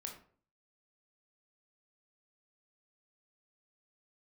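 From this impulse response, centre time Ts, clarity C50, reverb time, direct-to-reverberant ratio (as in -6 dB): 21 ms, 7.5 dB, 0.50 s, 1.5 dB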